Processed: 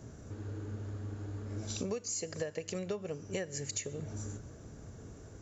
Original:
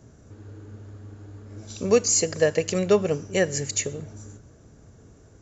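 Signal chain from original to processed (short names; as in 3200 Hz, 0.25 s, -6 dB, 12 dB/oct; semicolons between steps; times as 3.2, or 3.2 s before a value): compressor 20:1, threshold -35 dBFS, peak gain reduction 23 dB; gain +1.5 dB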